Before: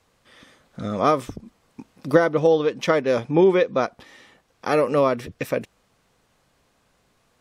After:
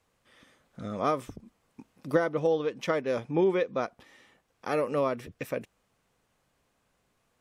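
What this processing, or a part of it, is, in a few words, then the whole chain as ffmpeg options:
exciter from parts: -filter_complex "[0:a]asplit=2[link_01][link_02];[link_02]highpass=3300,asoftclip=type=tanh:threshold=-27.5dB,highpass=frequency=2800:width=0.5412,highpass=frequency=2800:width=1.3066,volume=-11dB[link_03];[link_01][link_03]amix=inputs=2:normalize=0,volume=-8.5dB"

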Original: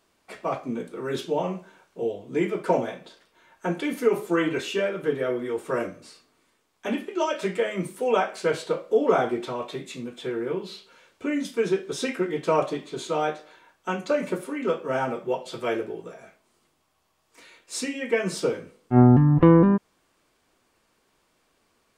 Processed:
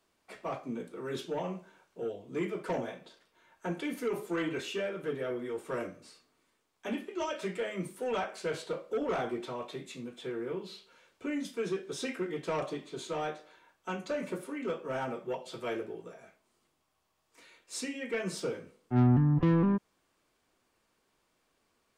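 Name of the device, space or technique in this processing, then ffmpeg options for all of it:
one-band saturation: -filter_complex "[0:a]acrossover=split=230|2300[link_01][link_02][link_03];[link_02]asoftclip=type=tanh:threshold=-21.5dB[link_04];[link_01][link_04][link_03]amix=inputs=3:normalize=0,volume=-7dB"

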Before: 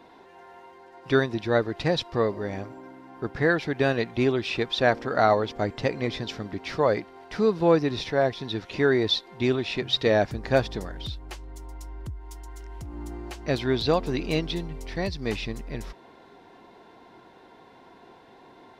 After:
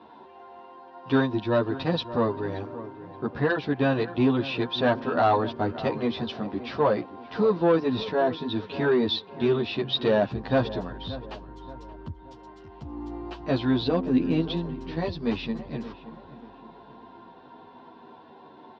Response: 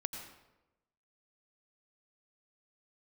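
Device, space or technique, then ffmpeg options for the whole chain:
barber-pole flanger into a guitar amplifier: -filter_complex "[0:a]asplit=2[link_01][link_02];[link_02]adelay=10.6,afreqshift=-0.32[link_03];[link_01][link_03]amix=inputs=2:normalize=1,asoftclip=type=tanh:threshold=-18.5dB,highpass=80,equalizer=frequency=240:width_type=q:width=4:gain=6,equalizer=frequency=980:width_type=q:width=4:gain=6,equalizer=frequency=2100:width_type=q:width=4:gain=-9,lowpass=frequency=4100:width=0.5412,lowpass=frequency=4100:width=1.3066,asettb=1/sr,asplit=3[link_04][link_05][link_06];[link_04]atrim=end=13.884[link_07];[link_05]atrim=start=13.88:end=14.42,asetpts=PTS-STARTPTS,afade=type=in:duration=0.004:curve=qsin,afade=type=out:start_time=0.536:duration=0.004:curve=qsin,equalizer=frequency=250:width_type=o:width=1:gain=5,equalizer=frequency=1000:width_type=o:width=1:gain=-7,equalizer=frequency=4000:width_type=o:width=1:gain=-8[link_08];[link_06]atrim=start=14.416[link_09];[link_07][link_08]acrossfade=duration=0.004:curve1=hsin:curve2=qsin[link_10];[link_10][link_09]acrossfade=duration=0.004:curve1=qsin:curve2=hsin,asplit=2[link_11][link_12];[link_12]adelay=576,lowpass=frequency=1800:poles=1,volume=-14.5dB,asplit=2[link_13][link_14];[link_14]adelay=576,lowpass=frequency=1800:poles=1,volume=0.41,asplit=2[link_15][link_16];[link_16]adelay=576,lowpass=frequency=1800:poles=1,volume=0.41,asplit=2[link_17][link_18];[link_18]adelay=576,lowpass=frequency=1800:poles=1,volume=0.41[link_19];[link_11][link_13][link_15][link_17][link_19]amix=inputs=5:normalize=0,volume=3.5dB"

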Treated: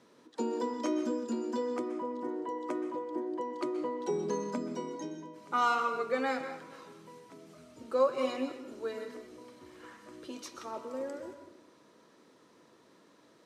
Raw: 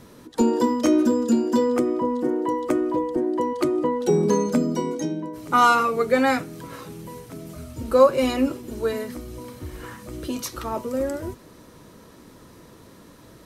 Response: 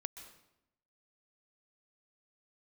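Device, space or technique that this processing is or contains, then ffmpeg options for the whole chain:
supermarket ceiling speaker: -filter_complex "[0:a]highpass=270,lowpass=6900[link_01];[1:a]atrim=start_sample=2205[link_02];[link_01][link_02]afir=irnorm=-1:irlink=0,volume=-8.5dB"

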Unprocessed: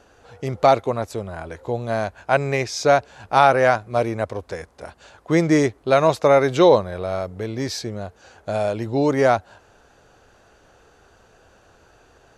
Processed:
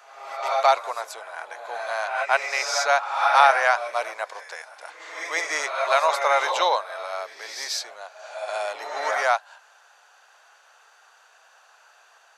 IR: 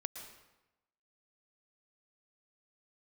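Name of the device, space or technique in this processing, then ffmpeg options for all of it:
ghost voice: -filter_complex "[0:a]areverse[link_01];[1:a]atrim=start_sample=2205[link_02];[link_01][link_02]afir=irnorm=-1:irlink=0,areverse,highpass=frequency=800:width=0.5412,highpass=frequency=800:width=1.3066,volume=4dB"

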